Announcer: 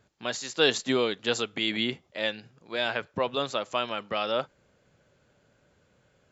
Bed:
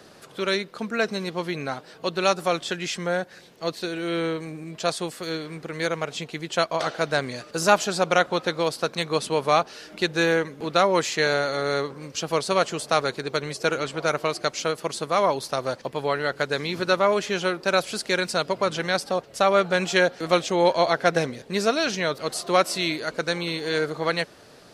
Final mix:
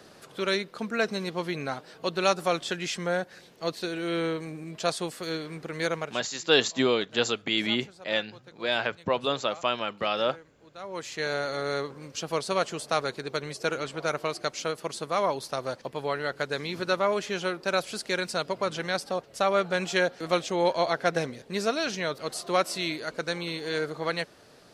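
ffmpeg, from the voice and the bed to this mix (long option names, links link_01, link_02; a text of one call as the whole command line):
ffmpeg -i stem1.wav -i stem2.wav -filter_complex "[0:a]adelay=5900,volume=1.5dB[link_01];[1:a]volume=18.5dB,afade=type=out:start_time=5.95:duration=0.3:silence=0.0668344,afade=type=in:start_time=10.77:duration=0.73:silence=0.0891251[link_02];[link_01][link_02]amix=inputs=2:normalize=0" out.wav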